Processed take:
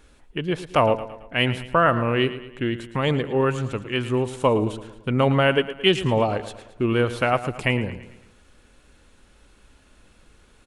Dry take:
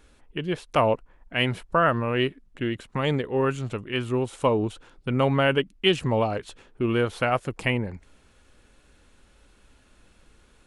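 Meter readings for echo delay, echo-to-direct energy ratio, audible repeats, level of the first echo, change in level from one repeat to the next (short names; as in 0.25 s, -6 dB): 0.111 s, -12.5 dB, 4, -13.5 dB, -6.5 dB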